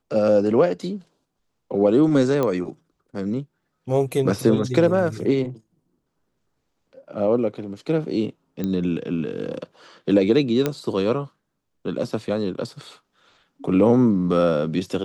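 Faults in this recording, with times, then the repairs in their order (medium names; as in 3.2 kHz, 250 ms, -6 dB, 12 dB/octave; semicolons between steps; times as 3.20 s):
2.43 s: pop -11 dBFS
8.64 s: pop -14 dBFS
10.66 s: pop -8 dBFS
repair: de-click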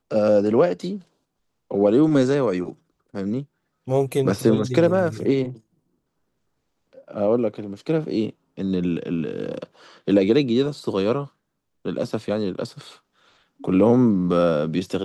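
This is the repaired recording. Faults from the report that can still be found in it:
nothing left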